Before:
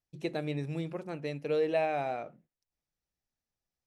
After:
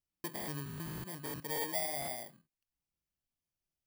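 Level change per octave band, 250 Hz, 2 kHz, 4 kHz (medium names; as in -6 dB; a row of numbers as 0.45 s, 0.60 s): -8.0 dB, -3.0 dB, +2.5 dB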